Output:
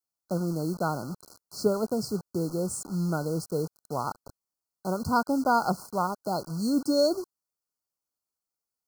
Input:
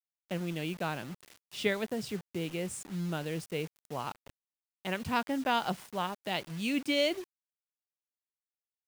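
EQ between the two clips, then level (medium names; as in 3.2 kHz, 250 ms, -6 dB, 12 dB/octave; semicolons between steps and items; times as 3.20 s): brick-wall FIR band-stop 1.5–4.1 kHz; +6.5 dB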